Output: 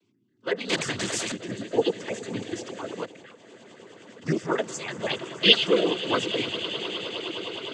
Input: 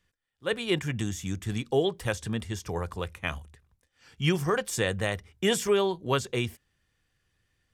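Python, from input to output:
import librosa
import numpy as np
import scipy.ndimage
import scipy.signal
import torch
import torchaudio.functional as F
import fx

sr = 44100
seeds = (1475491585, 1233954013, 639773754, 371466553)

p1 = fx.spec_dropout(x, sr, seeds[0], share_pct=32)
p2 = fx.low_shelf(p1, sr, hz=370.0, db=5.0)
p3 = p2 + 10.0 ** (-24.0 / 20.0) * np.pad(p2, (int(183 * sr / 1000.0), 0))[:len(p2)]
p4 = fx.add_hum(p3, sr, base_hz=60, snr_db=28)
p5 = fx.lowpass_res(p4, sr, hz=3200.0, q=13.0, at=(5.09, 5.66))
p6 = p5 + fx.echo_swell(p5, sr, ms=103, loudest=8, wet_db=-18.0, dry=0)
p7 = fx.level_steps(p6, sr, step_db=15, at=(3.02, 4.26))
p8 = scipy.signal.sosfilt(scipy.signal.butter(2, 260.0, 'highpass', fs=sr, output='sos'), p7)
p9 = fx.noise_vocoder(p8, sr, seeds[1], bands=16)
p10 = fx.spectral_comp(p9, sr, ratio=2.0, at=(0.69, 1.32))
y = p10 * 10.0 ** (1.0 / 20.0)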